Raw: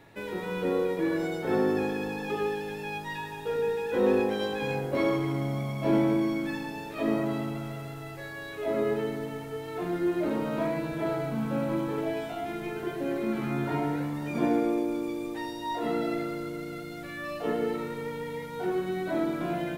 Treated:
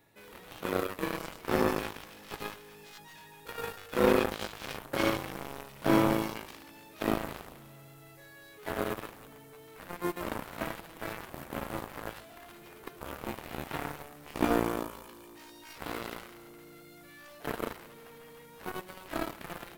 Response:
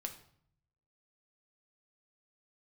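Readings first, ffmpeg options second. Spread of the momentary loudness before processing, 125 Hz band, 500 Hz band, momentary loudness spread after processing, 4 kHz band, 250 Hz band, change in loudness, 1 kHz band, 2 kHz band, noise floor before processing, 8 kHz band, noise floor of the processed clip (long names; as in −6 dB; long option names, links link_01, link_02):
10 LU, −7.0 dB, −6.0 dB, 22 LU, 0.0 dB, −6.5 dB, −3.5 dB, −2.0 dB, −2.0 dB, −40 dBFS, +4.0 dB, −53 dBFS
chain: -af "aemphasis=mode=production:type=50kf,aeval=exprs='0.266*(cos(1*acos(clip(val(0)/0.266,-1,1)))-cos(1*PI/2))+0.0473*(cos(7*acos(clip(val(0)/0.266,-1,1)))-cos(7*PI/2))':channel_layout=same"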